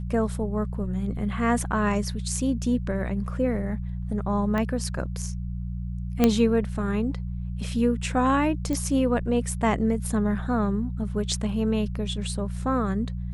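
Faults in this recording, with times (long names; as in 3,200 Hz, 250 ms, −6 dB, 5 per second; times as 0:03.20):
mains hum 60 Hz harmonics 3 −31 dBFS
0:04.58: click −16 dBFS
0:06.24: click −6 dBFS
0:08.73: click −16 dBFS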